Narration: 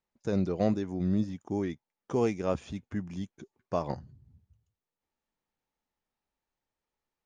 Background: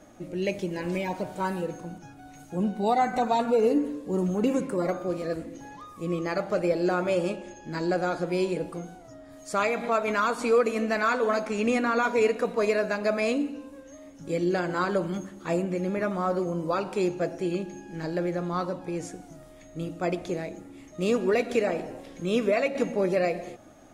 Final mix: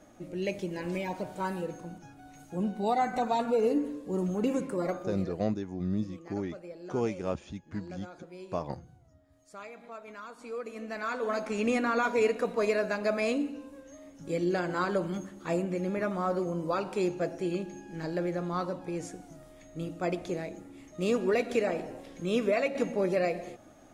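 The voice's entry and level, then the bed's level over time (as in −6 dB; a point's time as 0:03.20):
4.80 s, −3.0 dB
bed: 0:04.95 −4 dB
0:05.53 −19.5 dB
0:10.33 −19.5 dB
0:11.52 −3 dB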